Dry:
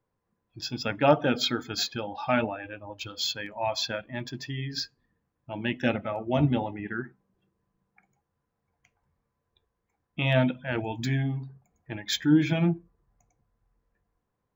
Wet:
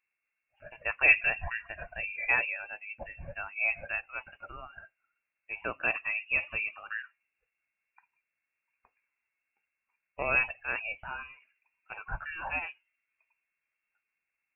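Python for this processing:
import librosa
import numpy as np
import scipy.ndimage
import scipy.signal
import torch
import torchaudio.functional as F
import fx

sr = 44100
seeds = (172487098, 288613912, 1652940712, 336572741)

y = scipy.signal.sosfilt(scipy.signal.ellip(4, 1.0, 40, 480.0, 'highpass', fs=sr, output='sos'), x)
y = fx.freq_invert(y, sr, carrier_hz=3200)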